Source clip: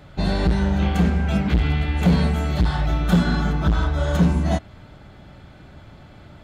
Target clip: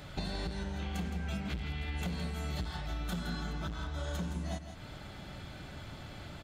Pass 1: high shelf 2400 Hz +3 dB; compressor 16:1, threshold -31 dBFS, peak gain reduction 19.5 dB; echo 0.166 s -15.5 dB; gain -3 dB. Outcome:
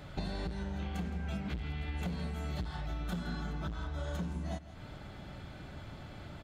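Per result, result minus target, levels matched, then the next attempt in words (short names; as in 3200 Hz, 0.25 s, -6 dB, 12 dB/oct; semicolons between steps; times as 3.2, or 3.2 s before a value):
4000 Hz band -4.0 dB; echo-to-direct -6 dB
high shelf 2400 Hz +10 dB; compressor 16:1, threshold -31 dBFS, peak gain reduction 20 dB; echo 0.166 s -15.5 dB; gain -3 dB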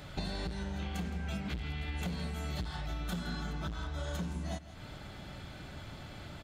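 echo-to-direct -6 dB
high shelf 2400 Hz +10 dB; compressor 16:1, threshold -31 dBFS, peak gain reduction 20 dB; echo 0.166 s -9.5 dB; gain -3 dB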